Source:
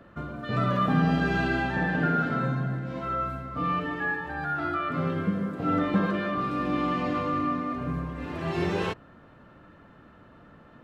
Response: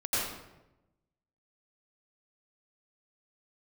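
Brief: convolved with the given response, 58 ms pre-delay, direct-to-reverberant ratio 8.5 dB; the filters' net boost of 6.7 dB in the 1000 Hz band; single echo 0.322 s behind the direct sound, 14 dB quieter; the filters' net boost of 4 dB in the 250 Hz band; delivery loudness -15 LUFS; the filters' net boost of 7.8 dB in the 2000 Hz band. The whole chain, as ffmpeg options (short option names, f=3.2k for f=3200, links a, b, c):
-filter_complex "[0:a]equalizer=f=250:t=o:g=5,equalizer=f=1k:t=o:g=5.5,equalizer=f=2k:t=o:g=8,aecho=1:1:322:0.2,asplit=2[a][b];[1:a]atrim=start_sample=2205,adelay=58[c];[b][c]afir=irnorm=-1:irlink=0,volume=-17.5dB[d];[a][d]amix=inputs=2:normalize=0,volume=7dB"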